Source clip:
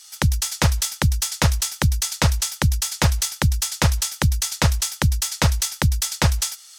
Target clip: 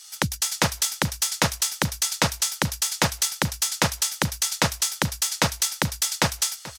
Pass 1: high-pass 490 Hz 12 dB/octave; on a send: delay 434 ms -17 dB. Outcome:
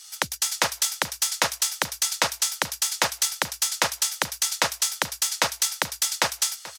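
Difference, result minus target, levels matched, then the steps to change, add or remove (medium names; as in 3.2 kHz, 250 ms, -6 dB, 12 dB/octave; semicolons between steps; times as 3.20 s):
250 Hz band -10.5 dB
change: high-pass 190 Hz 12 dB/octave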